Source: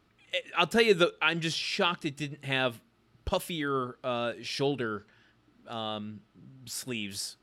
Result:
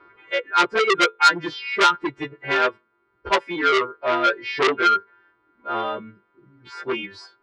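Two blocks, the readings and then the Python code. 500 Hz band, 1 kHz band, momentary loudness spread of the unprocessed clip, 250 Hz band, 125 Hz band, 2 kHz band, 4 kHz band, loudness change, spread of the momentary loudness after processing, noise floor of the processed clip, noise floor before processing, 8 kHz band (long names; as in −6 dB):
+6.0 dB, +14.0 dB, 15 LU, +3.5 dB, −6.0 dB, +10.0 dB, +5.5 dB, +9.0 dB, 12 LU, −68 dBFS, −67 dBFS, +3.0 dB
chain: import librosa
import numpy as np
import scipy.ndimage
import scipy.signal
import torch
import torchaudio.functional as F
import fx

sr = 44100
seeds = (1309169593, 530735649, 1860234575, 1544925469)

y = fx.freq_snap(x, sr, grid_st=2)
y = scipy.signal.sosfilt(scipy.signal.butter(4, 3800.0, 'lowpass', fs=sr, output='sos'), y)
y = fx.band_shelf(y, sr, hz=880.0, db=12.0, octaves=2.7)
y = fx.dereverb_blind(y, sr, rt60_s=1.3)
y = fx.low_shelf(y, sr, hz=170.0, db=4.0)
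y = fx.rider(y, sr, range_db=4, speed_s=0.5)
y = fx.small_body(y, sr, hz=(360.0, 1000.0, 1400.0, 2100.0), ring_ms=25, db=14)
y = fx.transformer_sat(y, sr, knee_hz=3100.0)
y = y * librosa.db_to_amplitude(-5.0)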